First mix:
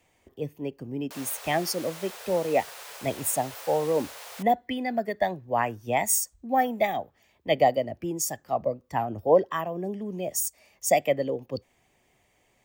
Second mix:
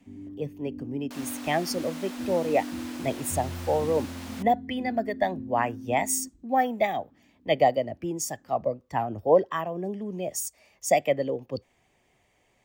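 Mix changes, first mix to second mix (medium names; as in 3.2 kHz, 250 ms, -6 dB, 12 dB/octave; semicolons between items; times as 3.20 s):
first sound: unmuted; master: add treble shelf 10 kHz -8.5 dB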